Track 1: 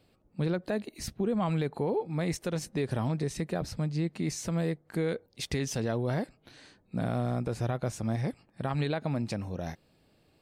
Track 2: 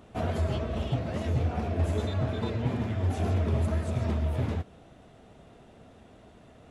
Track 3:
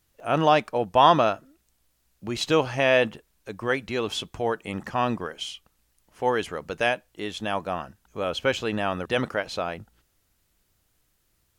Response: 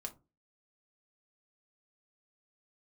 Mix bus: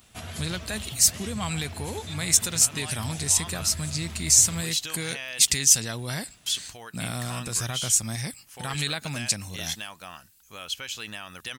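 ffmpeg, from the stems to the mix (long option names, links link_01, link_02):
-filter_complex "[0:a]agate=range=-13dB:threshold=-54dB:ratio=16:detection=peak,equalizer=frequency=7500:width_type=o:width=0.51:gain=8,volume=0dB[link_01];[1:a]volume=-5.5dB[link_02];[2:a]acompressor=threshold=-24dB:ratio=2.5,adelay=2350,volume=-9.5dB,asplit=3[link_03][link_04][link_05];[link_03]atrim=end=5.68,asetpts=PTS-STARTPTS,afade=type=out:start_time=5.676:duration=0.004:curve=hsin[link_06];[link_04]atrim=start=5.68:end=6.46,asetpts=PTS-STARTPTS,volume=0[link_07];[link_05]atrim=start=6.46,asetpts=PTS-STARTPTS,afade=type=in:duration=0.004:curve=hsin[link_08];[link_06][link_07][link_08]concat=n=3:v=0:a=1[link_09];[link_02][link_09]amix=inputs=2:normalize=0,alimiter=level_in=4.5dB:limit=-24dB:level=0:latency=1:release=184,volume=-4.5dB,volume=0dB[link_10];[link_01][link_10]amix=inputs=2:normalize=0,crystalizer=i=8.5:c=0,equalizer=frequency=470:width=0.68:gain=-9.5"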